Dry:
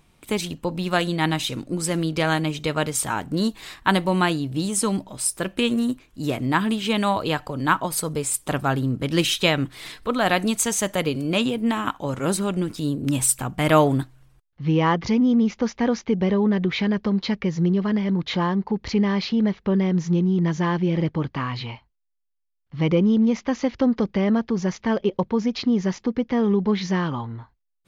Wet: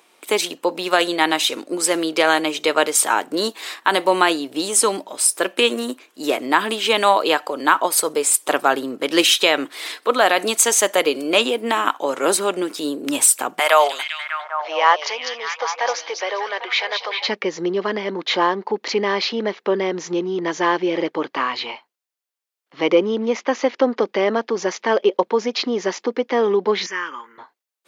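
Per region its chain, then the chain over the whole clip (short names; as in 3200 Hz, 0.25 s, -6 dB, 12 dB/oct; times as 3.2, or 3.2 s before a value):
13.59–17.27 HPF 610 Hz 24 dB/oct + delay with a stepping band-pass 0.199 s, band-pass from 4700 Hz, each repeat -0.7 oct, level -2 dB
23.04–24.06 LPF 8200 Hz + bell 4700 Hz -3 dB 0.97 oct
26.86–27.38 HPF 1100 Hz 6 dB/oct + high shelf 6900 Hz +9 dB + fixed phaser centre 1700 Hz, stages 4
whole clip: HPF 350 Hz 24 dB/oct; maximiser +9 dB; gain -1 dB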